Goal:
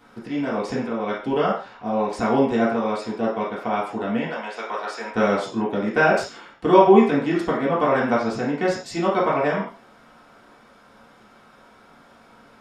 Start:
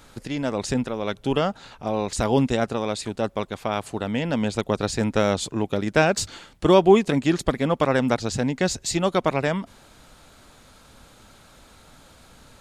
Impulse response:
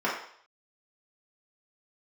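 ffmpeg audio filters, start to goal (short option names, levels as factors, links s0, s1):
-filter_complex "[0:a]asettb=1/sr,asplit=3[s0][s1][s2];[s0]atrim=end=4.264[s3];[s1]atrim=start=4.26:end=5.12,asetpts=PTS-STARTPTS,afade=t=in:d=0.004:c=qsin,afade=t=out:st=0.856:d=0.004:c=qsin,highpass=750[s4];[s2]atrim=start=5.116[s5];[s3][s4]acrossfade=d=0.004:c1=hsin:c2=qsin[s6];[s6][s5]acrossfade=d=0.004:c1=qsin:c2=hsin[s7];[1:a]atrim=start_sample=2205,afade=t=out:st=0.22:d=0.01,atrim=end_sample=10143[s8];[s7][s8]afir=irnorm=-1:irlink=0,volume=0.299"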